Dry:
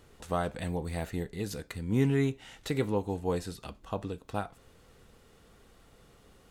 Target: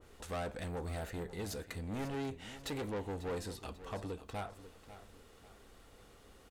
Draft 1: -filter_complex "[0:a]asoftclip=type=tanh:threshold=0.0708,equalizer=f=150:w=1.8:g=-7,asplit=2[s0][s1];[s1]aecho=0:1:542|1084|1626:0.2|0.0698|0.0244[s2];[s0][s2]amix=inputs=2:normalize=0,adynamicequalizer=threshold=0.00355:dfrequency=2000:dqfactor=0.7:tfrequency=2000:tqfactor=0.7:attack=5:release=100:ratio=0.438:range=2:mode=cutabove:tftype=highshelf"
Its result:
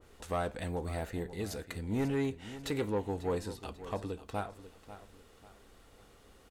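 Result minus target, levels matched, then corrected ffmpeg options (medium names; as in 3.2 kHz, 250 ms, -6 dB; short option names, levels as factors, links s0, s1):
saturation: distortion -9 dB
-filter_complex "[0:a]asoftclip=type=tanh:threshold=0.02,equalizer=f=150:w=1.8:g=-7,asplit=2[s0][s1];[s1]aecho=0:1:542|1084|1626:0.2|0.0698|0.0244[s2];[s0][s2]amix=inputs=2:normalize=0,adynamicequalizer=threshold=0.00355:dfrequency=2000:dqfactor=0.7:tfrequency=2000:tqfactor=0.7:attack=5:release=100:ratio=0.438:range=2:mode=cutabove:tftype=highshelf"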